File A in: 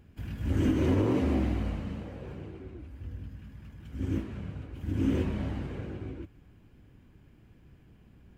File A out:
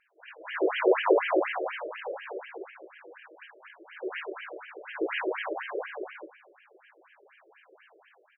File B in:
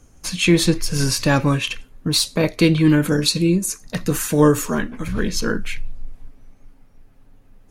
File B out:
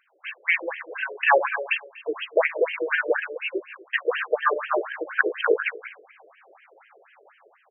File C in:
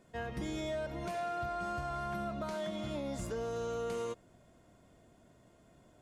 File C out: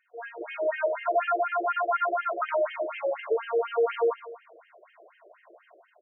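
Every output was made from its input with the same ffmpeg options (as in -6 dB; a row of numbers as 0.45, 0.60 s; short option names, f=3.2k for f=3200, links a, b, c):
-filter_complex "[0:a]dynaudnorm=f=170:g=5:m=13dB,equalizer=f=170:t=o:w=2.9:g=-7,afftfilt=real='re*lt(hypot(re,im),1.26)':imag='im*lt(hypot(re,im),1.26)':win_size=1024:overlap=0.75,asplit=2[a][b];[b]aecho=0:1:120|240|360|480:0.211|0.0951|0.0428|0.0193[c];[a][c]amix=inputs=2:normalize=0,afftfilt=real='re*between(b*sr/1024,450*pow(2300/450,0.5+0.5*sin(2*PI*4.1*pts/sr))/1.41,450*pow(2300/450,0.5+0.5*sin(2*PI*4.1*pts/sr))*1.41)':imag='im*between(b*sr/1024,450*pow(2300/450,0.5+0.5*sin(2*PI*4.1*pts/sr))/1.41,450*pow(2300/450,0.5+0.5*sin(2*PI*4.1*pts/sr))*1.41)':win_size=1024:overlap=0.75,volume=5.5dB"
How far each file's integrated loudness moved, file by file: +1.5, -6.0, +10.5 LU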